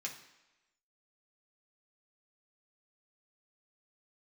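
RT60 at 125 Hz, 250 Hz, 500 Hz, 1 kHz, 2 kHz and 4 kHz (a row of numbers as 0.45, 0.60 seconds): 0.75, 0.95, 1.0, 1.1, 1.1, 0.95 seconds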